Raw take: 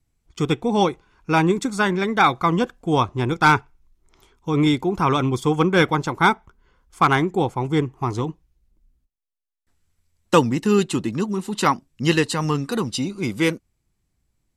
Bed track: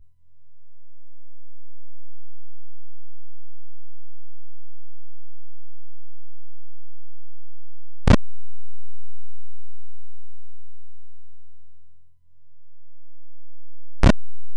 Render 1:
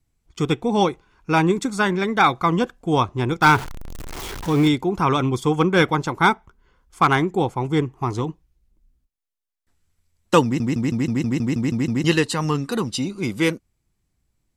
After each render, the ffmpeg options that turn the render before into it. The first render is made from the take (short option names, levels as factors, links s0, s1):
-filter_complex "[0:a]asettb=1/sr,asplit=3[s0][s1][s2];[s0]atrim=end=3.424[s3];[s1]atrim=start=3.42:end=4.68,asetpts=PTS-STARTPTS,afade=t=in:d=0.004:c=qsin,afade=t=out:st=1.256:d=0.004:c=qsin,aeval=exprs='val(0)+0.5*0.0501*sgn(val(0))':c=same[s4];[s2]atrim=start=4.676[s5];[s3][s4]acrossfade=d=0.004:c1=hsin:c2=qsin[s6];[s6][s5]acrossfade=d=0.004:c1=qsin:c2=hsin,asplit=11[s7][s8][s9][s10][s11][s12][s13][s14][s15][s16][s17];[s7]atrim=end=10.602[s18];[s8]atrim=start=10.438:end=10.602[s19];[s9]atrim=start=10.438:end=10.602[s20];[s10]atrim=start=10.438:end=10.602[s21];[s11]atrim=start=10.438:end=10.602[s22];[s12]atrim=start=10.438:end=10.602[s23];[s13]atrim=start=10.438:end=10.602[s24];[s14]atrim=start=10.438:end=10.602[s25];[s15]atrim=start=10.438:end=10.602[s26];[s16]atrim=start=10.438:end=10.602[s27];[s17]atrim=start=12.038[s28];[s18][s19]acrossfade=d=0.004:c1=hsin:c2=hsin[s29];[s29][s20]acrossfade=d=0.004:c1=hsin:c2=hsin[s30];[s30][s21]acrossfade=d=0.004:c1=hsin:c2=hsin[s31];[s31][s22]acrossfade=d=0.004:c1=hsin:c2=hsin[s32];[s32][s23]acrossfade=d=0.004:c1=hsin:c2=hsin[s33];[s33][s24]acrossfade=d=0.004:c1=hsin:c2=hsin[s34];[s34][s25]acrossfade=d=0.004:c1=hsin:c2=hsin[s35];[s35][s26]acrossfade=d=0.004:c1=hsin:c2=hsin[s36];[s36][s27]acrossfade=d=0.004:c1=hsin:c2=hsin[s37];[s37][s28]acrossfade=d=0.004:c1=hsin:c2=hsin"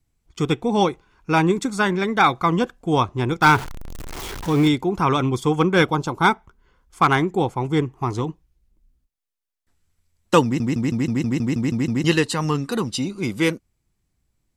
-filter_complex "[0:a]asettb=1/sr,asplit=3[s0][s1][s2];[s0]atrim=end=5.844[s3];[s1]atrim=start=5.84:end=6.25,asetpts=PTS-STARTPTS,afade=t=in:d=0.004:c=qsin,afade=t=out:st=0.406:d=0.004:c=qsin,equalizer=f=1900:t=o:w=0.44:g=-13[s4];[s2]atrim=start=6.246[s5];[s3][s4]acrossfade=d=0.004:c1=hsin:c2=qsin[s6];[s6][s5]acrossfade=d=0.004:c1=qsin:c2=hsin"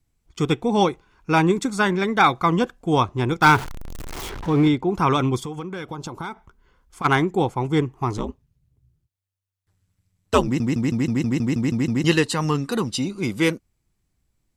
-filter_complex "[0:a]asettb=1/sr,asplit=3[s0][s1][s2];[s0]atrim=end=4.294[s3];[s1]atrim=start=4.29:end=4.89,asetpts=PTS-STARTPTS,afade=t=in:d=0.004:c=qsin,afade=t=out:st=0.596:d=0.004:c=qsin,aemphasis=mode=reproduction:type=75kf[s4];[s2]atrim=start=4.886[s5];[s3][s4]acrossfade=d=0.004:c1=hsin:c2=qsin[s6];[s6][s5]acrossfade=d=0.004:c1=qsin:c2=hsin,asplit=3[s7][s8][s9];[s7]afade=t=out:st=5.4:d=0.02[s10];[s8]acompressor=threshold=0.0447:ratio=16:attack=3.2:release=140:knee=1:detection=peak,afade=t=in:st=5.4:d=0.02,afade=t=out:st=7.04:d=0.02[s11];[s9]afade=t=in:st=7.04:d=0.02[s12];[s10][s11][s12]amix=inputs=3:normalize=0,asplit=3[s13][s14][s15];[s13]afade=t=out:st=8.17:d=0.02[s16];[s14]aeval=exprs='val(0)*sin(2*PI*95*n/s)':c=same,afade=t=in:st=8.17:d=0.02,afade=t=out:st=10.47:d=0.02[s17];[s15]afade=t=in:st=10.47:d=0.02[s18];[s16][s17][s18]amix=inputs=3:normalize=0"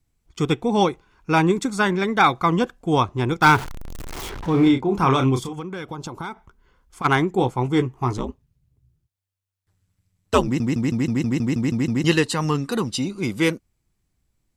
-filter_complex "[0:a]asettb=1/sr,asplit=3[s0][s1][s2];[s0]atrim=end=4.514[s3];[s1]atrim=start=4.51:end=5.53,asetpts=PTS-STARTPTS,afade=t=in:d=0.004:c=qsin,afade=t=out:st=1.016:d=0.004:c=qsin,asplit=2[s4][s5];[s5]adelay=30,volume=0.501[s6];[s4][s6]amix=inputs=2:normalize=0,atrim=end_sample=44982[s7];[s2]atrim=start=5.526[s8];[s3][s7]acrossfade=d=0.004:c1=hsin:c2=qsin[s9];[s9][s8]acrossfade=d=0.004:c1=qsin:c2=hsin,asettb=1/sr,asplit=3[s10][s11][s12];[s10]atrim=end=7.374[s13];[s11]atrim=start=7.37:end=8.13,asetpts=PTS-STARTPTS,afade=t=in:d=0.004:c=qsin,afade=t=out:st=0.756:d=0.004:c=qsin,asplit=2[s14][s15];[s15]adelay=16,volume=0.398[s16];[s14][s16]amix=inputs=2:normalize=0,atrim=end_sample=33516[s17];[s12]atrim=start=8.126[s18];[s13][s17]acrossfade=d=0.004:c1=hsin:c2=qsin[s19];[s19][s18]acrossfade=d=0.004:c1=qsin:c2=hsin"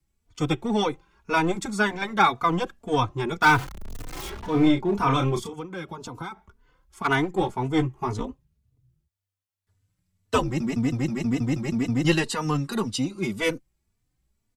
-filter_complex "[0:a]acrossover=split=100|590|5100[s0][s1][s2][s3];[s1]aeval=exprs='clip(val(0),-1,0.0841)':c=same[s4];[s0][s4][s2][s3]amix=inputs=4:normalize=0,asplit=2[s5][s6];[s6]adelay=3.3,afreqshift=1.9[s7];[s5][s7]amix=inputs=2:normalize=1"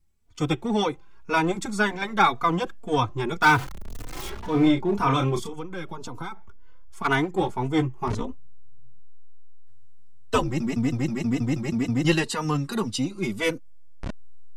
-filter_complex "[1:a]volume=0.106[s0];[0:a][s0]amix=inputs=2:normalize=0"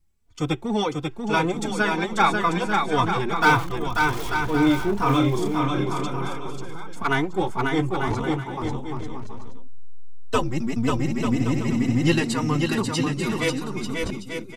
-af "aecho=1:1:540|891|1119|1267|1364:0.631|0.398|0.251|0.158|0.1"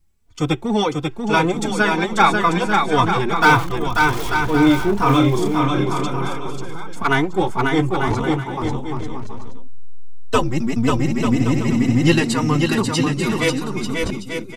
-af "volume=1.78,alimiter=limit=0.794:level=0:latency=1"